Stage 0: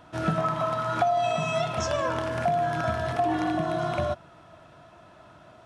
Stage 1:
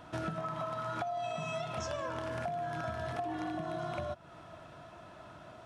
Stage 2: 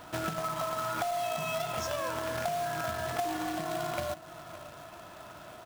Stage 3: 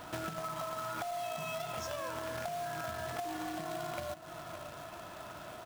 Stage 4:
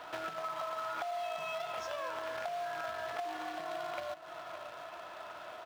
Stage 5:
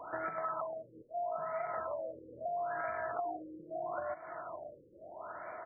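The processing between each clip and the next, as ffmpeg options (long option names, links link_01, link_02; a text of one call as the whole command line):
ffmpeg -i in.wav -af "acompressor=threshold=-35dB:ratio=6" out.wav
ffmpeg -i in.wav -af "aecho=1:1:570:0.15,acrusher=bits=2:mode=log:mix=0:aa=0.000001,equalizer=frequency=120:width=0.39:gain=-5,volume=4.5dB" out.wav
ffmpeg -i in.wav -af "acompressor=threshold=-40dB:ratio=2.5,volume=1dB" out.wav
ffmpeg -i in.wav -filter_complex "[0:a]acrossover=split=410 4700:gain=0.141 1 0.224[link_01][link_02][link_03];[link_01][link_02][link_03]amix=inputs=3:normalize=0,volume=1.5dB" out.wav
ffmpeg -i in.wav -af "afftfilt=real='re*lt(b*sr/1024,540*pow(2400/540,0.5+0.5*sin(2*PI*0.77*pts/sr)))':imag='im*lt(b*sr/1024,540*pow(2400/540,0.5+0.5*sin(2*PI*0.77*pts/sr)))':win_size=1024:overlap=0.75,volume=2dB" out.wav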